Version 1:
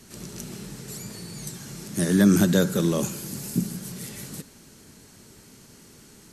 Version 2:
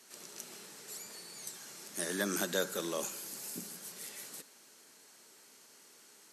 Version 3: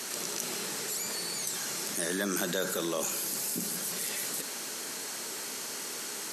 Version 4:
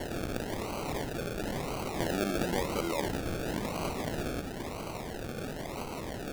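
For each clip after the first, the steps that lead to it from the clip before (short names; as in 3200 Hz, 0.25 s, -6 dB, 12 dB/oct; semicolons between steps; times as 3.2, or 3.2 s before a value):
HPF 540 Hz 12 dB/oct; gain -6 dB
fast leveller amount 70%
decimation with a swept rate 35×, swing 60% 0.98 Hz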